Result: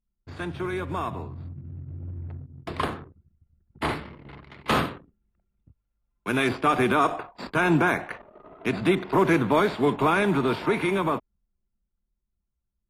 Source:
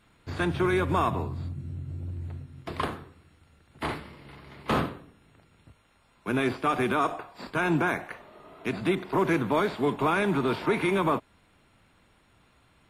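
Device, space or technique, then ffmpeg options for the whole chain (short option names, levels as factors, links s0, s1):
voice memo with heavy noise removal: -filter_complex "[0:a]asettb=1/sr,asplit=3[s0][s1][s2];[s0]atrim=end=4.434[s3];[s1]atrim=start=4.43:end=6.49,asetpts=PTS-STARTPTS,afade=t=in:d=0.004:c=qsin,afade=t=out:st=2.056:d=0.004:c=qsin,tiltshelf=f=1300:g=-3.5[s4];[s2]atrim=start=6.486[s5];[s3][s4]acrossfade=d=0.004:c1=hsin:c2=qsin[s6];[s6][s5]acrossfade=d=0.004:c1=qsin:c2=hsin,anlmdn=0.0158,dynaudnorm=f=370:g=13:m=3.55,volume=0.531"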